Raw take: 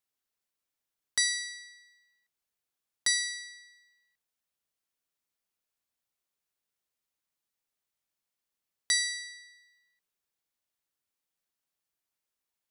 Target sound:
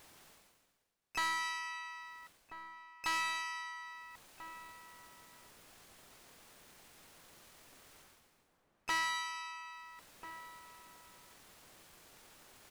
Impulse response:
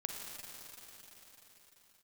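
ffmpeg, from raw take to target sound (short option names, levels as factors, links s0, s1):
-filter_complex "[0:a]acrossover=split=3200[s0][s1];[s1]acompressor=threshold=0.0141:ratio=4:attack=1:release=60[s2];[s0][s2]amix=inputs=2:normalize=0,highshelf=f=3400:g=-8.5,bandreject=f=434:t=h:w=4,bandreject=f=868:t=h:w=4,bandreject=f=1302:t=h:w=4,bandreject=f=1736:t=h:w=4,bandreject=f=2170:t=h:w=4,bandreject=f=2604:t=h:w=4,bandreject=f=3038:t=h:w=4,bandreject=f=3472:t=h:w=4,bandreject=f=3906:t=h:w=4,bandreject=f=4340:t=h:w=4,bandreject=f=4774:t=h:w=4,bandreject=f=5208:t=h:w=4,bandreject=f=5642:t=h:w=4,bandreject=f=6076:t=h:w=4,bandreject=f=6510:t=h:w=4,bandreject=f=6944:t=h:w=4,bandreject=f=7378:t=h:w=4,bandreject=f=7812:t=h:w=4,bandreject=f=8246:t=h:w=4,bandreject=f=8680:t=h:w=4,bandreject=f=9114:t=h:w=4,bandreject=f=9548:t=h:w=4,bandreject=f=9982:t=h:w=4,bandreject=f=10416:t=h:w=4,bandreject=f=10850:t=h:w=4,bandreject=f=11284:t=h:w=4,areverse,acompressor=mode=upward:threshold=0.00708:ratio=2.5,areverse,asplit=4[s3][s4][s5][s6];[s4]asetrate=22050,aresample=44100,atempo=2,volume=0.891[s7];[s5]asetrate=29433,aresample=44100,atempo=1.49831,volume=0.794[s8];[s6]asetrate=58866,aresample=44100,atempo=0.749154,volume=0.316[s9];[s3][s7][s8][s9]amix=inputs=4:normalize=0,asoftclip=type=tanh:threshold=0.0251,asplit=2[s10][s11];[s11]adelay=1341,volume=0.316,highshelf=f=4000:g=-30.2[s12];[s10][s12]amix=inputs=2:normalize=0,volume=1.26"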